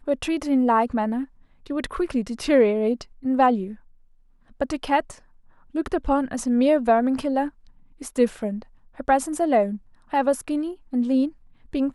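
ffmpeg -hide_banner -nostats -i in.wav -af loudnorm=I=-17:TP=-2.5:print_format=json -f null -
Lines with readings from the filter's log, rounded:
"input_i" : "-23.4",
"input_tp" : "-7.2",
"input_lra" : "1.4",
"input_thresh" : "-34.1",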